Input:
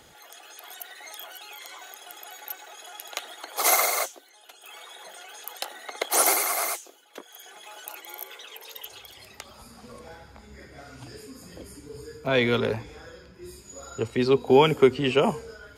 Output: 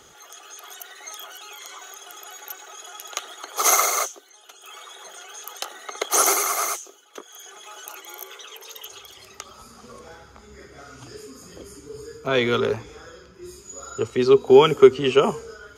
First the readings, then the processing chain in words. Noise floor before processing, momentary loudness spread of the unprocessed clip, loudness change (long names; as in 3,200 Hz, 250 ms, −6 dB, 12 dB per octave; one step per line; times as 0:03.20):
−53 dBFS, 23 LU, +4.0 dB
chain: thirty-one-band graphic EQ 400 Hz +8 dB, 1,250 Hz +10 dB, 3,150 Hz +4 dB, 6,300 Hz +11 dB
level −1 dB